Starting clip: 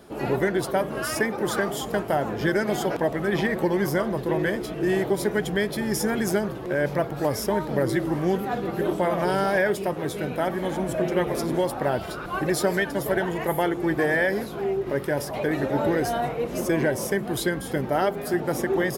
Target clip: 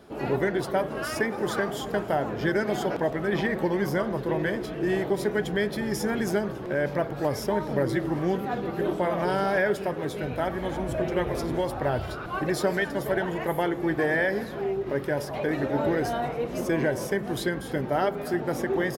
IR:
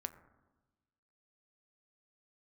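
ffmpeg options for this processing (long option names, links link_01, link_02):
-filter_complex "[0:a]asettb=1/sr,asplit=3[link_01][link_02][link_03];[link_01]atrim=end=10.214[link_04];[link_02]atrim=start=10.21:end=12.15,asetpts=PTS-STARTPTS,afade=type=in:duration=0.004:curve=qsin,afade=type=out:start_time=1.936:duration=0.004:curve=qsin,lowshelf=frequency=130:width_type=q:width=1.5:gain=8[link_05];[link_03]atrim=start=12.146[link_06];[link_04][link_05]acrossfade=duration=0.004:curve1=hsin:curve2=qsin[link_07];[link_07][link_06]acrossfade=duration=0.004:curve1=qsin:curve2=hsin,aecho=1:1:274:0.0841,asplit=2[link_08][link_09];[1:a]atrim=start_sample=2205,lowpass=6800[link_10];[link_09][link_10]afir=irnorm=-1:irlink=0,volume=0.5dB[link_11];[link_08][link_11]amix=inputs=2:normalize=0,volume=-7dB"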